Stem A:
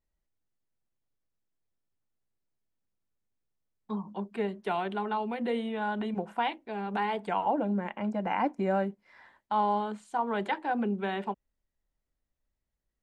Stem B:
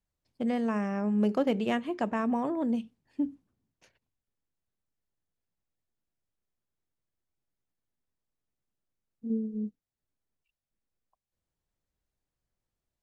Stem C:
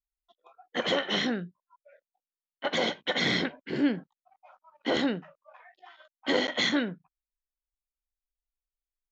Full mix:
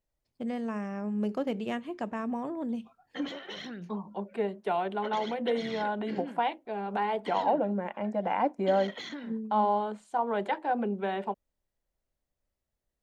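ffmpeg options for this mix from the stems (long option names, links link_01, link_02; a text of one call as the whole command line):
ffmpeg -i stem1.wav -i stem2.wav -i stem3.wav -filter_complex "[0:a]equalizer=frequency=580:width_type=o:width=1.1:gain=7.5,volume=-3dB[link_01];[1:a]volume=-4.5dB[link_02];[2:a]alimiter=limit=-21.5dB:level=0:latency=1,aphaser=in_gain=1:out_gain=1:delay=3.8:decay=0.48:speed=0.65:type=sinusoidal,acompressor=threshold=-31dB:ratio=6,adelay=2400,volume=-6.5dB[link_03];[link_01][link_02][link_03]amix=inputs=3:normalize=0" out.wav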